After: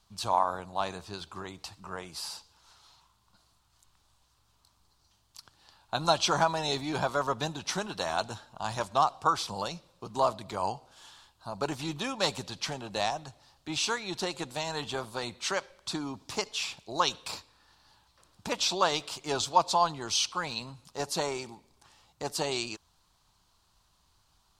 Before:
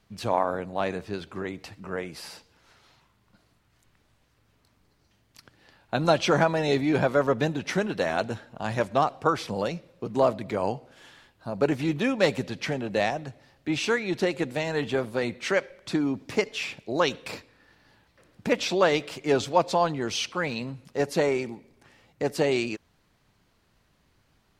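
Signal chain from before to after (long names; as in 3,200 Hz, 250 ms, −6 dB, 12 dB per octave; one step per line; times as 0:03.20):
octave-band graphic EQ 125/250/500/1,000/2,000/4,000/8,000 Hz −6/−9/−10/+7/−12/+5/+5 dB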